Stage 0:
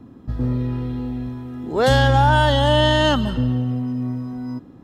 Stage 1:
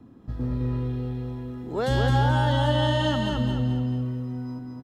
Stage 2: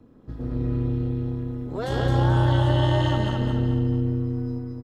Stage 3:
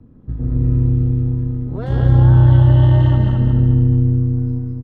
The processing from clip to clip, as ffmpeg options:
-filter_complex "[0:a]acrossover=split=340[a][b];[b]acompressor=threshold=-19dB:ratio=6[c];[a][c]amix=inputs=2:normalize=0,asplit=2[d][e];[e]aecho=0:1:215|430|645|860|1075:0.668|0.281|0.118|0.0495|0.0208[f];[d][f]amix=inputs=2:normalize=0,volume=-6.5dB"
-filter_complex "[0:a]asplit=2[a][b];[b]adelay=144,lowpass=f=1.6k:p=1,volume=-3dB,asplit=2[c][d];[d]adelay=144,lowpass=f=1.6k:p=1,volume=0.46,asplit=2[e][f];[f]adelay=144,lowpass=f=1.6k:p=1,volume=0.46,asplit=2[g][h];[h]adelay=144,lowpass=f=1.6k:p=1,volume=0.46,asplit=2[i][j];[j]adelay=144,lowpass=f=1.6k:p=1,volume=0.46,asplit=2[k][l];[l]adelay=144,lowpass=f=1.6k:p=1,volume=0.46[m];[a][c][e][g][i][k][m]amix=inputs=7:normalize=0,tremolo=f=220:d=0.75"
-af "bass=f=250:g=14,treble=f=4k:g=-14,volume=-2dB"

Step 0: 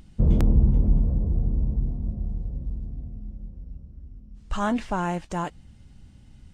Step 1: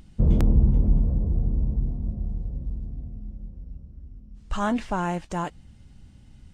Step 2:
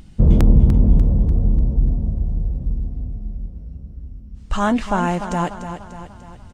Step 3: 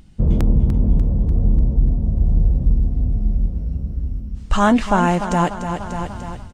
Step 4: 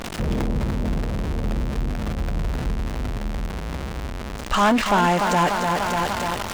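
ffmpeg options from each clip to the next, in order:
-af anull
-af "aecho=1:1:295|590|885|1180|1475|1770:0.316|0.161|0.0823|0.0419|0.0214|0.0109,volume=6.5dB"
-af "dynaudnorm=f=110:g=5:m=14.5dB,volume=-4dB"
-filter_complex "[0:a]aeval=exprs='val(0)+0.5*0.0841*sgn(val(0))':c=same,asplit=2[a][b];[b]highpass=f=720:p=1,volume=17dB,asoftclip=type=tanh:threshold=-3.5dB[c];[a][c]amix=inputs=2:normalize=0,lowpass=f=5.1k:p=1,volume=-6dB,volume=-6.5dB"

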